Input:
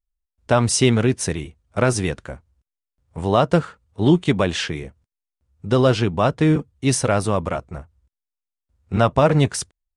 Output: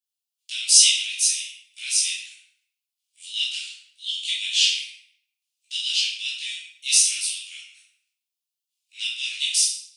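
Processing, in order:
Butterworth high-pass 2,700 Hz 48 dB per octave
convolution reverb RT60 0.75 s, pre-delay 11 ms, DRR −7.5 dB
level +2 dB

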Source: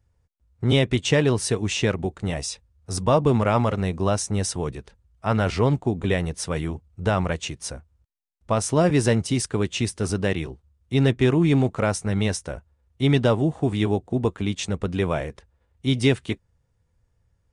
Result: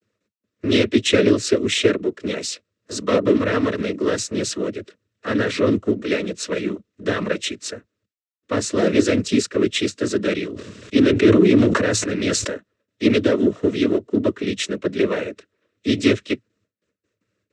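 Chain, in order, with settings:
noise gate with hold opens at −58 dBFS
low-shelf EQ 360 Hz +10 dB
mid-hump overdrive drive 17 dB, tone 3,100 Hz, clips at −1 dBFS
cochlear-implant simulation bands 12
phaser with its sweep stopped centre 340 Hz, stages 4
0:10.47–0:12.54: level that may fall only so fast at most 28 dB per second
level −1 dB

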